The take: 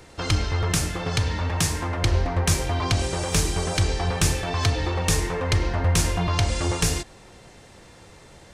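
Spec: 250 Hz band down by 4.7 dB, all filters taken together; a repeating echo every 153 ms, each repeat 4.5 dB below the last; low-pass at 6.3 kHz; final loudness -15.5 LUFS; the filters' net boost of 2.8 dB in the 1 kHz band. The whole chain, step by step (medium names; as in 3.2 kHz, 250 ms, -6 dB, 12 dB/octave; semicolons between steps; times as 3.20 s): low-pass 6.3 kHz; peaking EQ 250 Hz -8.5 dB; peaking EQ 1 kHz +4 dB; feedback delay 153 ms, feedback 60%, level -4.5 dB; trim +7.5 dB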